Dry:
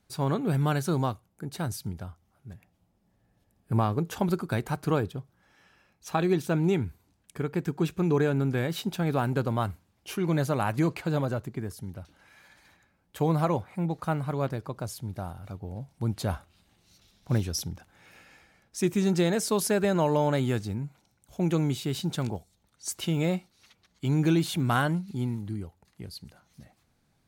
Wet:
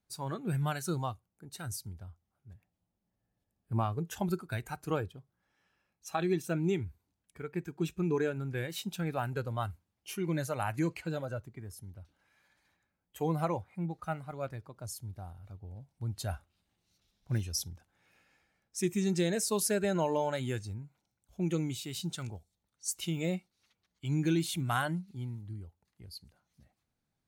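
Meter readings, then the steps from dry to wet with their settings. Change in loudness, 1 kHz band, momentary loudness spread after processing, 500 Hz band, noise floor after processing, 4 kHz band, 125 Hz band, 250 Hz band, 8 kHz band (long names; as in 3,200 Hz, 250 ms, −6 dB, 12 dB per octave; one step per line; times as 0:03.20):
−6.0 dB, −6.0 dB, 18 LU, −6.0 dB, −84 dBFS, −4.0 dB, −7.0 dB, −7.0 dB, −1.0 dB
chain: dynamic equaliser 8,900 Hz, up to +5 dB, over −53 dBFS, Q 0.74
noise reduction from a noise print of the clip's start 9 dB
level −5 dB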